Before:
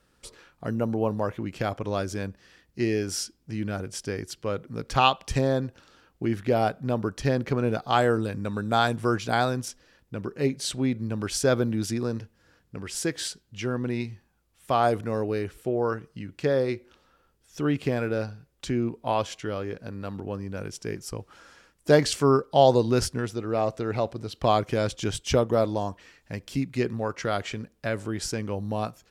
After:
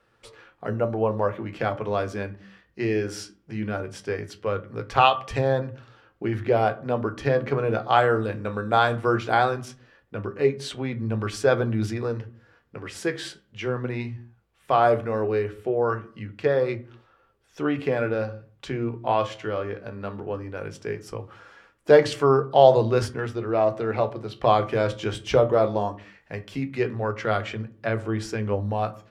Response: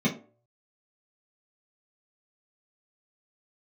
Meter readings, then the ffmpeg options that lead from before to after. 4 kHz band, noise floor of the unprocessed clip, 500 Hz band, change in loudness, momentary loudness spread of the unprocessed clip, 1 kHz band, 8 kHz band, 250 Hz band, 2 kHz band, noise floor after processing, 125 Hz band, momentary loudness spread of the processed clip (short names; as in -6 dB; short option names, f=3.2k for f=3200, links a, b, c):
-2.0 dB, -67 dBFS, +3.5 dB, +2.5 dB, 13 LU, +3.5 dB, -8.5 dB, -1.5 dB, +3.0 dB, -64 dBFS, +0.5 dB, 15 LU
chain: -filter_complex "[0:a]bass=f=250:g=-12,treble=f=4k:g=-14,flanger=delay=8.7:depth=7:regen=62:speed=0.18:shape=sinusoidal,asplit=2[a][b];[1:a]atrim=start_sample=2205,afade=t=out:st=0.2:d=0.01,atrim=end_sample=9261,asetrate=22932,aresample=44100[c];[b][c]afir=irnorm=-1:irlink=0,volume=-24.5dB[d];[a][d]amix=inputs=2:normalize=0,volume=8.5dB"